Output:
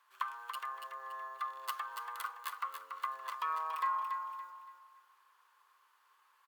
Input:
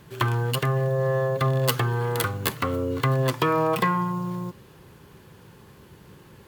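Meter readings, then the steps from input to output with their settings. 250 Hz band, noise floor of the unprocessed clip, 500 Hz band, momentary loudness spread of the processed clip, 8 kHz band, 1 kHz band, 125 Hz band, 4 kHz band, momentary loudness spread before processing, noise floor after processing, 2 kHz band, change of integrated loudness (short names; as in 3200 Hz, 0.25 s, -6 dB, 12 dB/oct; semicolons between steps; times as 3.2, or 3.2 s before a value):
under -40 dB, -51 dBFS, -33.5 dB, 11 LU, -18.0 dB, -8.5 dB, under -40 dB, -17.5 dB, 5 LU, -70 dBFS, -14.0 dB, -15.0 dB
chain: ladder high-pass 1000 Hz, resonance 65%; feedback echo 0.284 s, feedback 35%, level -7 dB; gain -8 dB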